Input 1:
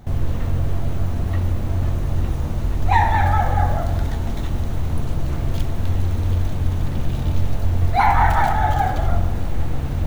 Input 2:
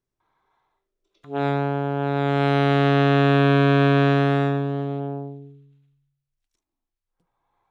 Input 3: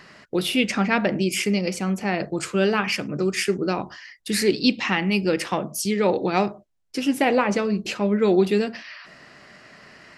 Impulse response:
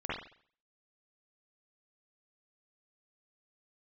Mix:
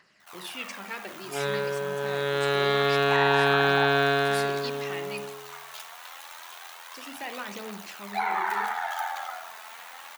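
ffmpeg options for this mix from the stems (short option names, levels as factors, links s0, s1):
-filter_complex "[0:a]aeval=exprs='val(0)*sin(2*PI*42*n/s)':c=same,highpass=f=930:w=0.5412,highpass=f=930:w=1.3066,adelay=200,volume=0.841,asplit=2[s0][s1];[s1]volume=0.251[s2];[1:a]equalizer=f=250:t=o:w=0.67:g=-5,equalizer=f=1600:t=o:w=0.67:g=6,equalizer=f=4000:t=o:w=0.67:g=11,volume=0.376,asplit=2[s3][s4];[s4]volume=0.501[s5];[2:a]lowshelf=f=490:g=-11,volume=0.168,asplit=3[s6][s7][s8];[s6]atrim=end=5.25,asetpts=PTS-STARTPTS,afade=t=out:st=5.246:d=0.004:c=hsin[s9];[s7]atrim=start=5.25:end=6.92,asetpts=PTS-STARTPTS,volume=0[s10];[s8]atrim=start=6.92,asetpts=PTS-STARTPTS,afade=t=in:d=0.004:c=hsin[s11];[s9][s10][s11]concat=n=3:v=0:a=1,asplit=2[s12][s13];[s13]volume=0.251[s14];[s0][s12]amix=inputs=2:normalize=0,aphaser=in_gain=1:out_gain=1:delay=4.7:decay=0.48:speed=0.26:type=triangular,acompressor=threshold=0.0398:ratio=6,volume=1[s15];[3:a]atrim=start_sample=2205[s16];[s2][s5][s14]amix=inputs=3:normalize=0[s17];[s17][s16]afir=irnorm=-1:irlink=0[s18];[s3][s15][s18]amix=inputs=3:normalize=0,highpass=51,highshelf=f=8300:g=4"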